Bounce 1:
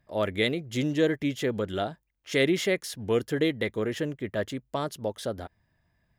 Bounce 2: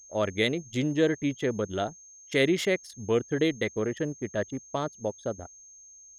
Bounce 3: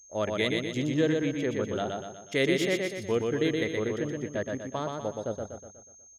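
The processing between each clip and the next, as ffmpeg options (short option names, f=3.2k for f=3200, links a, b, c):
-af "anlmdn=10,aeval=exprs='val(0)+0.00355*sin(2*PI*6400*n/s)':c=same"
-af "aecho=1:1:122|244|366|488|610|732:0.668|0.321|0.154|0.0739|0.0355|0.017,volume=-2.5dB"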